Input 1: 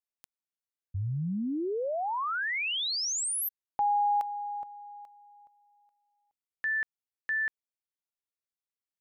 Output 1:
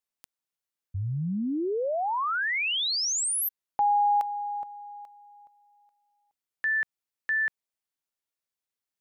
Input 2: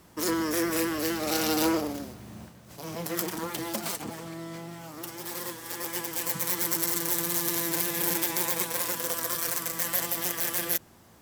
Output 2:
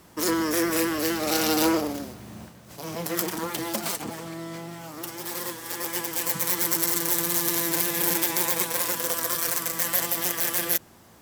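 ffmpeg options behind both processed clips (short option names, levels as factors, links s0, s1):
-af "lowshelf=f=160:g=-3,volume=1.5"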